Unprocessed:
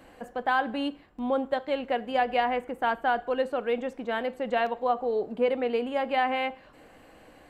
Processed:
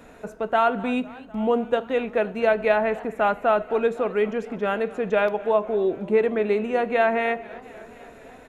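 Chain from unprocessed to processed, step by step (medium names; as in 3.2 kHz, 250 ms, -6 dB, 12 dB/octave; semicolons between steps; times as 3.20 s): wide varispeed 0.883×; echo from a far wall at 39 m, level -22 dB; modulated delay 252 ms, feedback 75%, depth 170 cents, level -22 dB; trim +5 dB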